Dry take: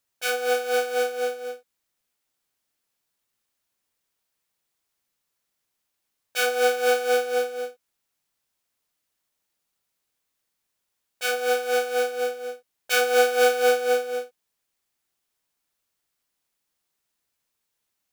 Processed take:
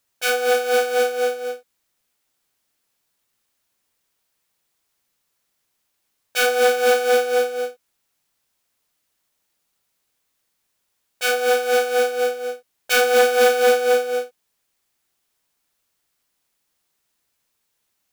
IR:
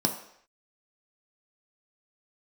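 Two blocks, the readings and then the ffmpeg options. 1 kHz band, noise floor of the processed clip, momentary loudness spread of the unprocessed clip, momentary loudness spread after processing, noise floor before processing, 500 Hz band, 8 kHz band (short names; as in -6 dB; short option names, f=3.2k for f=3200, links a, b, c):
+4.5 dB, -74 dBFS, 16 LU, 14 LU, -80 dBFS, +5.0 dB, +4.5 dB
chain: -af "asoftclip=type=tanh:threshold=-13.5dB,volume=6dB"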